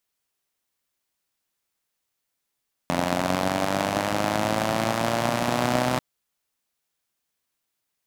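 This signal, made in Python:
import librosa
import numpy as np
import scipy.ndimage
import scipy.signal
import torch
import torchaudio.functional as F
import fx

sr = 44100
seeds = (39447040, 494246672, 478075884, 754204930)

y = fx.engine_four_rev(sr, seeds[0], length_s=3.09, rpm=2600, resonances_hz=(170.0, 260.0, 610.0), end_rpm=3800)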